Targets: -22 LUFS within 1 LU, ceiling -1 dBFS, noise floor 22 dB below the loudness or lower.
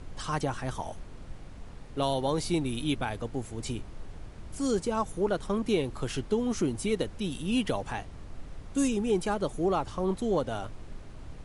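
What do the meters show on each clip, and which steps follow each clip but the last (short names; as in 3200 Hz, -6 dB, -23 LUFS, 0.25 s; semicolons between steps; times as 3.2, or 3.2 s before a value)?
noise floor -45 dBFS; noise floor target -53 dBFS; loudness -31.0 LUFS; peak -15.0 dBFS; loudness target -22.0 LUFS
-> noise print and reduce 8 dB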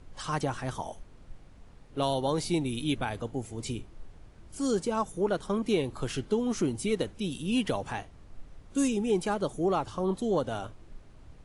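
noise floor -53 dBFS; loudness -31.0 LUFS; peak -15.0 dBFS; loudness target -22.0 LUFS
-> gain +9 dB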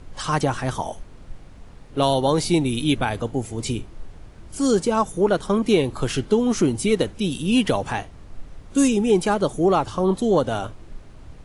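loudness -22.0 LUFS; peak -6.0 dBFS; noise floor -44 dBFS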